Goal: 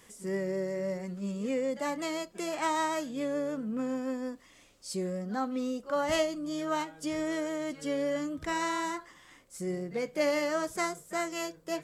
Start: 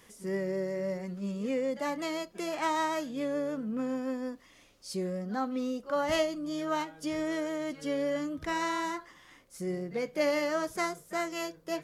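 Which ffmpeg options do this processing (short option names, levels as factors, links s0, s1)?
-af "equalizer=f=7800:t=o:w=0.27:g=8"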